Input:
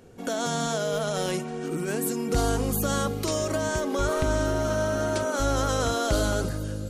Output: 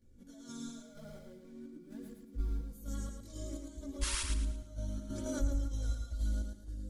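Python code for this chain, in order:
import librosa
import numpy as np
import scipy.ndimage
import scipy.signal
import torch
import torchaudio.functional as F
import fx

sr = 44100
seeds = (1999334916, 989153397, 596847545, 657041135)

p1 = fx.median_filter(x, sr, points=15, at=(0.75, 2.66))
p2 = fx.tone_stack(p1, sr, knobs='10-0-1')
p3 = fx.notch(p2, sr, hz=2700.0, q=5.3)
p4 = p3 + 0.81 * np.pad(p3, (int(3.5 * sr / 1000.0), 0))[:len(p3)]
p5 = fx.rider(p4, sr, range_db=4, speed_s=0.5)
p6 = p4 + (p5 * 10.0 ** (0.0 / 20.0))
p7 = fx.chopper(p6, sr, hz=2.1, depth_pct=65, duty_pct=45)
p8 = fx.spec_paint(p7, sr, seeds[0], shape='noise', start_s=4.01, length_s=0.21, low_hz=870.0, high_hz=11000.0, level_db=-30.0)
p9 = fx.chorus_voices(p8, sr, voices=2, hz=0.47, base_ms=18, depth_ms=4.3, mix_pct=65)
p10 = p9 + fx.echo_feedback(p9, sr, ms=111, feedback_pct=33, wet_db=-5, dry=0)
p11 = fx.env_flatten(p10, sr, amount_pct=50, at=(5.09, 5.67), fade=0.02)
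y = p11 * 10.0 ** (-4.5 / 20.0)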